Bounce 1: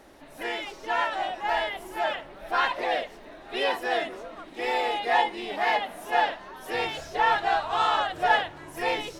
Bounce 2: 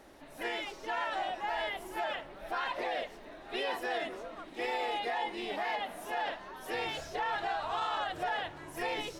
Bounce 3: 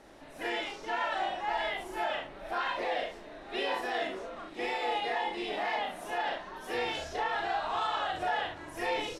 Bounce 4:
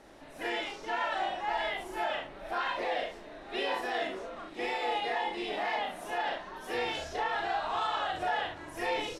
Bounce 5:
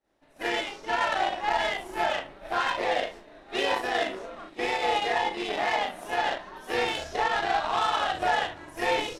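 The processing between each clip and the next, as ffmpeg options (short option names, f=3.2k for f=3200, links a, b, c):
-af "alimiter=limit=-22dB:level=0:latency=1:release=50,volume=-3.5dB"
-filter_complex "[0:a]lowpass=10k,asplit=2[a][b];[b]aecho=0:1:37|66:0.668|0.447[c];[a][c]amix=inputs=2:normalize=0"
-af anull
-af "aeval=exprs='0.1*(cos(1*acos(clip(val(0)/0.1,-1,1)))-cos(1*PI/2))+0.00708*(cos(7*acos(clip(val(0)/0.1,-1,1)))-cos(7*PI/2))':c=same,agate=range=-33dB:threshold=-47dB:ratio=3:detection=peak,volume=6.5dB"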